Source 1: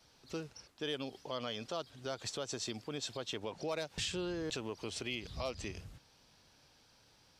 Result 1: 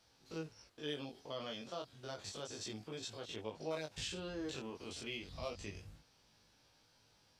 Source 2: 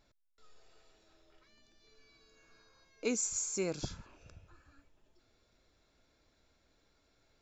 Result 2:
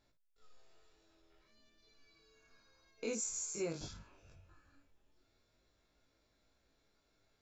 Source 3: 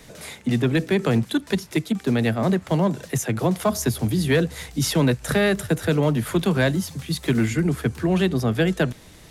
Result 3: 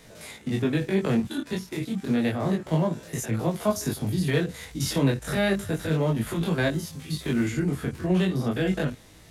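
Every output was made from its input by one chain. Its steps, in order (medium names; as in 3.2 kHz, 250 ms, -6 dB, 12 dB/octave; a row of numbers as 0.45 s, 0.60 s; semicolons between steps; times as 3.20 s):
spectrogram pixelated in time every 50 ms; chorus 0.31 Hz, delay 18 ms, depth 4.2 ms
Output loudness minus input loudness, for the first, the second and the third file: -4.5 LU, -5.0 LU, -4.0 LU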